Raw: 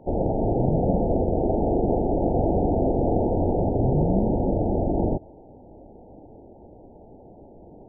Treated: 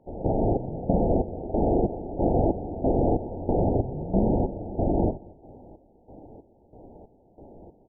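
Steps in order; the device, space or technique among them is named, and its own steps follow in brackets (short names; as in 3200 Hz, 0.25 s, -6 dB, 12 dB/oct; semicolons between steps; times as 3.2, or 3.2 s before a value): trance gate with a delay (step gate "...xxxx." 185 bpm -12 dB; feedback echo 0.225 s, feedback 37%, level -24 dB)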